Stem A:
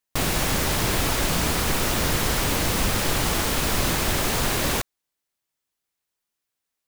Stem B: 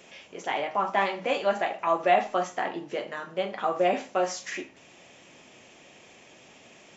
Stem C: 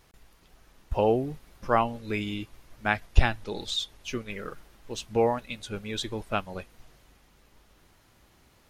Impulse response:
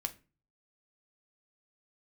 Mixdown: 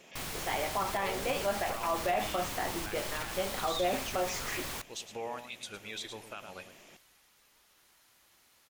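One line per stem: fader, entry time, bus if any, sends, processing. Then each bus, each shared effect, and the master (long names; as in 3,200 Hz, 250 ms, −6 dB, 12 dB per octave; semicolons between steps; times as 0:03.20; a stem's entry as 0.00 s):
−15.5 dB, 0.00 s, bus A, send −12 dB, no echo send, no processing
−4.0 dB, 0.00 s, no bus, no send, no echo send, no processing
−10.0 dB, 0.00 s, bus A, no send, echo send −15 dB, automatic gain control gain up to 6 dB; brickwall limiter −12.5 dBFS, peak gain reduction 10.5 dB; spectral tilt +2 dB per octave
bus A: 0.0 dB, low-shelf EQ 450 Hz −9 dB; brickwall limiter −29 dBFS, peak gain reduction 9.5 dB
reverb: on, RT60 0.35 s, pre-delay 6 ms
echo: single-tap delay 107 ms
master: brickwall limiter −21 dBFS, peak gain reduction 8.5 dB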